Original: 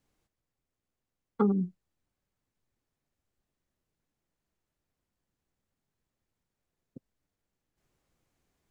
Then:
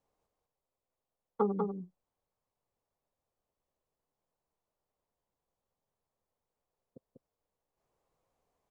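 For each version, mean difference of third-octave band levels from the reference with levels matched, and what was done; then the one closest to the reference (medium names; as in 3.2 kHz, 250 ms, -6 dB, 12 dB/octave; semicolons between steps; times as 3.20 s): 4.5 dB: high-order bell 700 Hz +11 dB; on a send: delay 194 ms -4.5 dB; on the sum: trim -9 dB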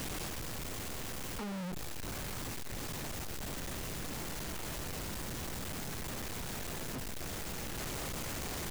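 22.0 dB: one-bit comparator; trim +2 dB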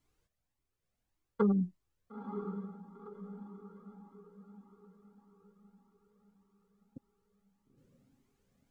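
1.0 dB: on a send: echo that smears into a reverb 954 ms, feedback 44%, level -8 dB; on the sum: Shepard-style flanger rising 1.7 Hz; trim +3 dB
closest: third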